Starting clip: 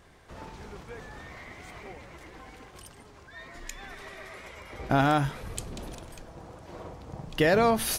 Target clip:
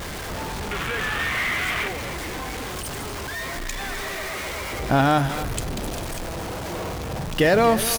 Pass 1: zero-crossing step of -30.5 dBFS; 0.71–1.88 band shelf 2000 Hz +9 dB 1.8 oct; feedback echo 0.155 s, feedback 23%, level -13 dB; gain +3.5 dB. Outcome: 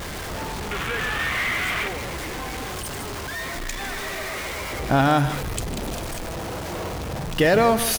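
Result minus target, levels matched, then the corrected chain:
echo 0.104 s early
zero-crossing step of -30.5 dBFS; 0.71–1.88 band shelf 2000 Hz +9 dB 1.8 oct; feedback echo 0.259 s, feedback 23%, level -13 dB; gain +3.5 dB

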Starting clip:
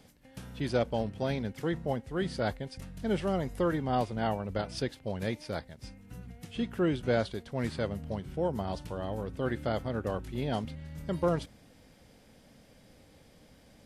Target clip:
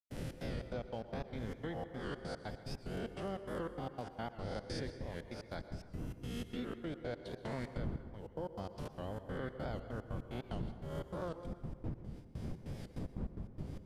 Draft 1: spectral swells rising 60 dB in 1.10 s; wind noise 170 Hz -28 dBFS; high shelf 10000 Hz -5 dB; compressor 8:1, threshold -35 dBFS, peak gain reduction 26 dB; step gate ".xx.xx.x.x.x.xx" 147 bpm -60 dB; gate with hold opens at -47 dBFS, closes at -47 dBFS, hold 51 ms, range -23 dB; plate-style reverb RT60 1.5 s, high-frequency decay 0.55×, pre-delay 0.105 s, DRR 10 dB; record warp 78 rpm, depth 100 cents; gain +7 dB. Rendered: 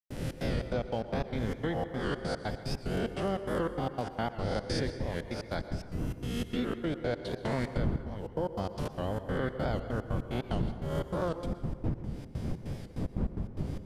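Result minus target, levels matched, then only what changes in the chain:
compressor: peak gain reduction -9 dB
change: compressor 8:1, threshold -45.5 dBFS, peak gain reduction 35.5 dB

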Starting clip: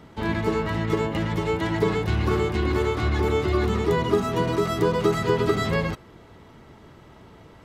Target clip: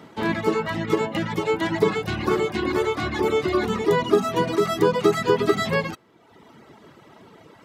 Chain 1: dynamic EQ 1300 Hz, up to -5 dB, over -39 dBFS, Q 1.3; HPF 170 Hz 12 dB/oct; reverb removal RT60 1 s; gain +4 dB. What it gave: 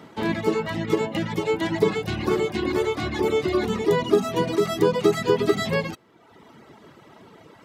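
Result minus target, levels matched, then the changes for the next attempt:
1000 Hz band -2.5 dB
remove: dynamic EQ 1300 Hz, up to -5 dB, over -39 dBFS, Q 1.3

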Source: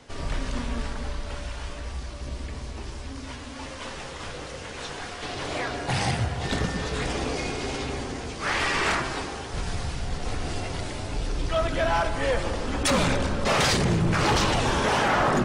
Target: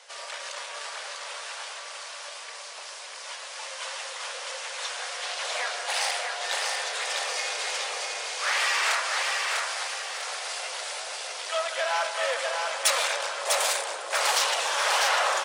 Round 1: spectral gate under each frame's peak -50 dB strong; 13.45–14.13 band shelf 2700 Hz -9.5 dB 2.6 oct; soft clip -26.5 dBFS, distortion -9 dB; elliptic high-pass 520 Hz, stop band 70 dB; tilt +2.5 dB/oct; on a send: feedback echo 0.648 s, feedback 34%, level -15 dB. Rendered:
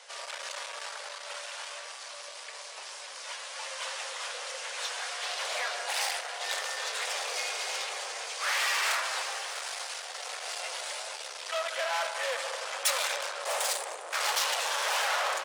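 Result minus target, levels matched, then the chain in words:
echo-to-direct -11.5 dB; soft clip: distortion +9 dB
spectral gate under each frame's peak -50 dB strong; 13.45–14.13 band shelf 2700 Hz -9.5 dB 2.6 oct; soft clip -19 dBFS, distortion -18 dB; elliptic high-pass 520 Hz, stop band 70 dB; tilt +2.5 dB/oct; on a send: feedback echo 0.648 s, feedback 34%, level -3.5 dB

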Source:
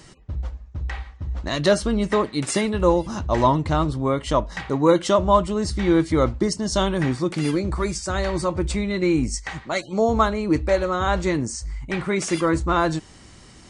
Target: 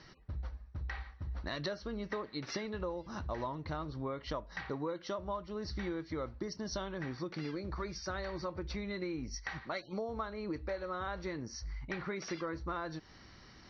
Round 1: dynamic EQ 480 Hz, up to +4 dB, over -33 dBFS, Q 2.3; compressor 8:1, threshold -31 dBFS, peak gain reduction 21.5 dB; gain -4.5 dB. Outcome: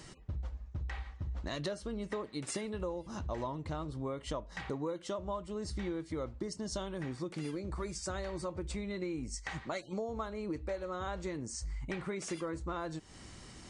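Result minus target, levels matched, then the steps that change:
8000 Hz band +5.0 dB
add after dynamic EQ: rippled Chebyshev low-pass 5900 Hz, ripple 6 dB

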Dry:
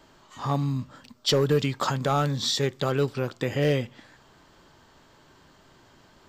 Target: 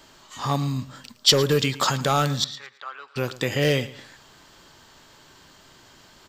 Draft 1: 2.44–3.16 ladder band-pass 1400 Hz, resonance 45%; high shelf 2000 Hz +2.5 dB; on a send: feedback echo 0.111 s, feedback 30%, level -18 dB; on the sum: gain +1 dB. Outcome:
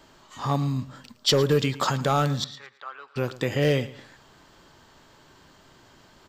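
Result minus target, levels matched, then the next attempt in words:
4000 Hz band -3.5 dB
2.44–3.16 ladder band-pass 1400 Hz, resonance 45%; high shelf 2000 Hz +10 dB; on a send: feedback echo 0.111 s, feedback 30%, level -18 dB; on the sum: gain +1 dB

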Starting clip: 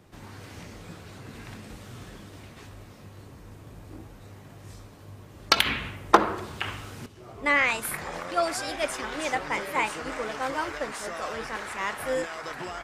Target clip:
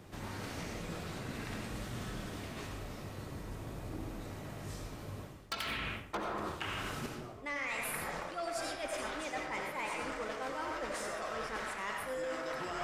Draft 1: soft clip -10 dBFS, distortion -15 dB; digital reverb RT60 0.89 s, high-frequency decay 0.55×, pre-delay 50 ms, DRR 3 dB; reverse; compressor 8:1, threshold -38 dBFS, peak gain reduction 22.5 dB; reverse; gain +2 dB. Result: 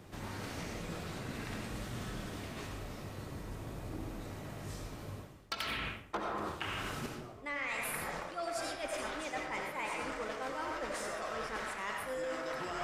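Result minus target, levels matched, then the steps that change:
soft clip: distortion -6 dB
change: soft clip -17 dBFS, distortion -9 dB

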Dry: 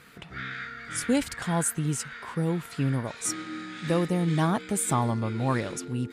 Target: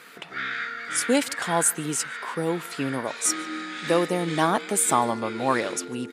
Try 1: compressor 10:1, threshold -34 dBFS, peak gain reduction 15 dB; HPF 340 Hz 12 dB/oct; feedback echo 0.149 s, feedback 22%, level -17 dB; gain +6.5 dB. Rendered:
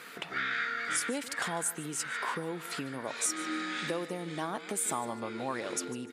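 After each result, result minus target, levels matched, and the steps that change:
compressor: peak gain reduction +15 dB; echo-to-direct +9.5 dB
remove: compressor 10:1, threshold -34 dBFS, peak gain reduction 15 dB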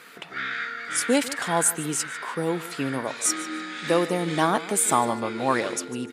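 echo-to-direct +9.5 dB
change: feedback echo 0.149 s, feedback 22%, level -26.5 dB

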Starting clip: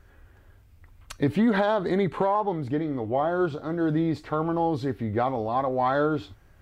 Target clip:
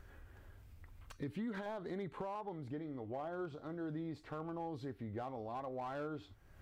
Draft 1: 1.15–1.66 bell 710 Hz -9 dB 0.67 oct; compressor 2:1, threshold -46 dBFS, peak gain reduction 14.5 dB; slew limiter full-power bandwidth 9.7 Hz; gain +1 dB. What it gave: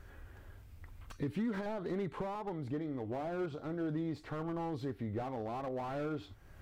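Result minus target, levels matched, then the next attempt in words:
compressor: peak gain reduction -6 dB
1.15–1.66 bell 710 Hz -9 dB 0.67 oct; compressor 2:1, threshold -57.5 dBFS, peak gain reduction 20.5 dB; slew limiter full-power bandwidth 9.7 Hz; gain +1 dB

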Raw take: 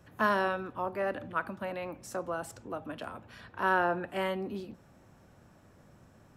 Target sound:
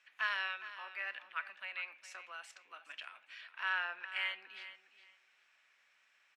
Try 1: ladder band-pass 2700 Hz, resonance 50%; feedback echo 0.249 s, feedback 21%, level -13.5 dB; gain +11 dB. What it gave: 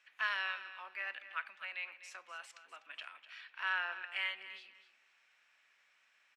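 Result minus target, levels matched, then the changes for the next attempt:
echo 0.163 s early
change: feedback echo 0.412 s, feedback 21%, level -13.5 dB

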